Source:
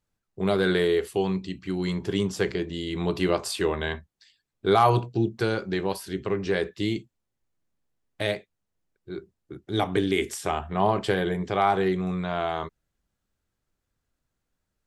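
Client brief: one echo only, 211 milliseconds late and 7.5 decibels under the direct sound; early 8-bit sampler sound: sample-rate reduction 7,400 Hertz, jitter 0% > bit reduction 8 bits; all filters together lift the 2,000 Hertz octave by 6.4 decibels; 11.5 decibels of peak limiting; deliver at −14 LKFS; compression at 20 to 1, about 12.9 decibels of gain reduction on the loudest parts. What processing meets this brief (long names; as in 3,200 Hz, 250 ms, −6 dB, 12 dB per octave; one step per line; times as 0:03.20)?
parametric band 2,000 Hz +8 dB
downward compressor 20 to 1, threshold −25 dBFS
brickwall limiter −24 dBFS
single-tap delay 211 ms −7.5 dB
sample-rate reduction 7,400 Hz, jitter 0%
bit reduction 8 bits
level +21 dB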